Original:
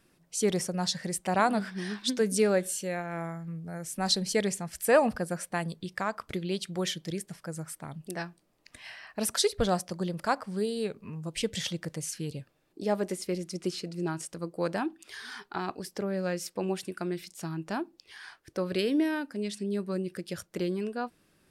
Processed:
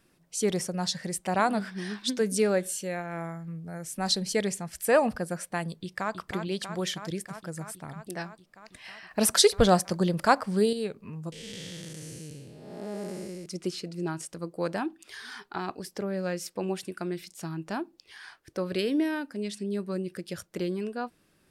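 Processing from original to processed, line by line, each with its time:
5.73–6.13 s: echo throw 320 ms, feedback 80%, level -7 dB
9.11–10.73 s: gain +6.5 dB
11.32–13.46 s: spectral blur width 414 ms

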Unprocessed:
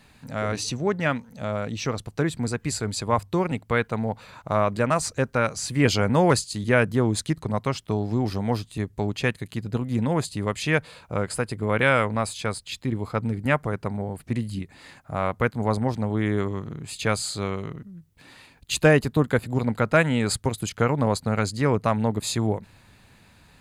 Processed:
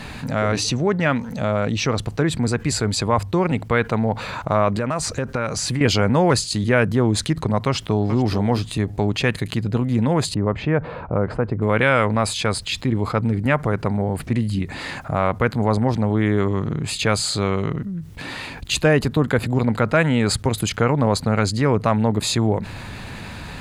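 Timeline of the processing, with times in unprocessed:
4.76–5.81 s: compression, threshold -28 dBFS
7.66–8.15 s: echo throw 430 ms, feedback 10%, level -12.5 dB
10.34–11.62 s: low-pass 1.1 kHz
whole clip: treble shelf 7.3 kHz -10.5 dB; level flattener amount 50%

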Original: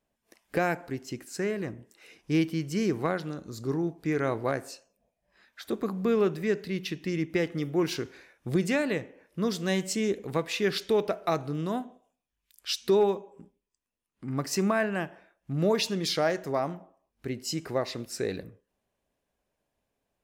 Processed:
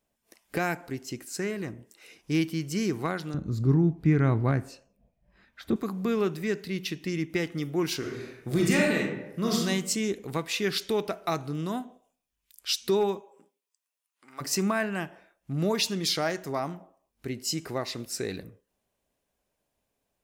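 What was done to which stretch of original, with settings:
3.34–5.76 s: tone controls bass +15 dB, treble -12 dB
7.98–9.62 s: reverb throw, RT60 0.83 s, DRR -3 dB
13.19–14.40 s: high-pass 400 Hz -> 1 kHz
whole clip: treble shelf 4.7 kHz +6 dB; band-stop 1.7 kHz, Q 29; dynamic bell 530 Hz, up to -6 dB, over -40 dBFS, Q 2.2

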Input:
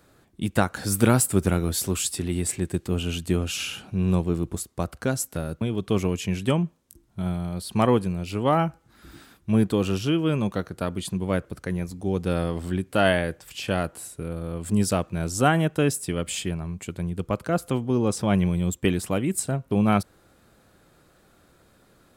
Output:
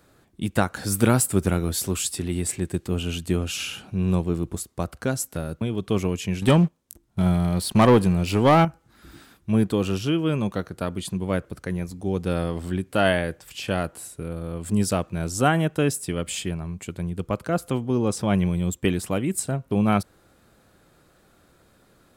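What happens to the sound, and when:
6.42–8.65 s: waveshaping leveller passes 2

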